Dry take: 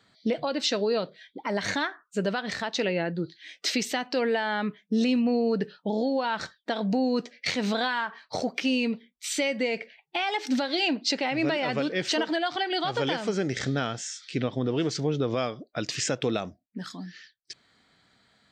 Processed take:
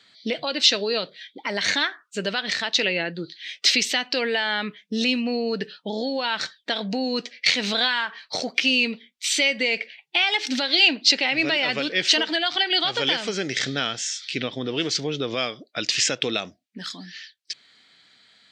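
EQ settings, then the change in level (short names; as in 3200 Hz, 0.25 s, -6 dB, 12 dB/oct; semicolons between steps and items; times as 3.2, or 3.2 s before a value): weighting filter D; 0.0 dB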